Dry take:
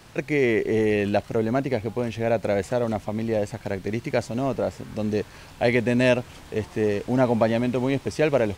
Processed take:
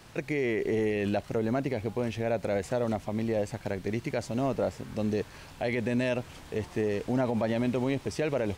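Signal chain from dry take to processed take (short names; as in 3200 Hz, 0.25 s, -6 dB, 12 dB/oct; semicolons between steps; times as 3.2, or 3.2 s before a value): limiter -16.5 dBFS, peak gain reduction 9 dB; gain -3 dB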